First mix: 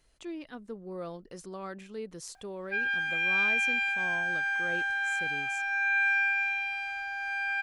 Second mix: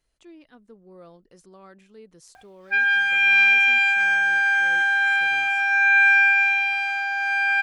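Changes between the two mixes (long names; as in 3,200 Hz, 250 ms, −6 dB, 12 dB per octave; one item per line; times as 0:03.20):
speech −7.5 dB
background +10.5 dB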